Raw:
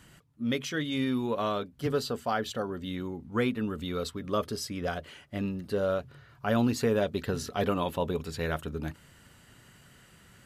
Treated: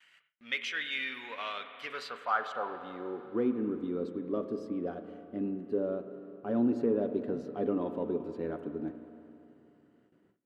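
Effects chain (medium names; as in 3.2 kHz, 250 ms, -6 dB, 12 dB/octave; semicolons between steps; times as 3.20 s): bass shelf 200 Hz -9.5 dB; waveshaping leveller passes 1; band-pass sweep 2.3 kHz -> 300 Hz, 1.87–3.48 s; spring tank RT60 3 s, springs 34/48 ms, chirp 70 ms, DRR 8 dB; gate with hold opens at -59 dBFS; trim +3 dB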